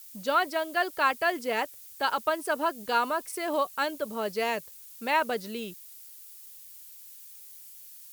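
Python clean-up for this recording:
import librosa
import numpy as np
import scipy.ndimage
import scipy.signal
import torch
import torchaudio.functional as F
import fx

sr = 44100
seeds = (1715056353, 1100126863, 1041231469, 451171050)

y = fx.noise_reduce(x, sr, print_start_s=6.52, print_end_s=7.02, reduce_db=25.0)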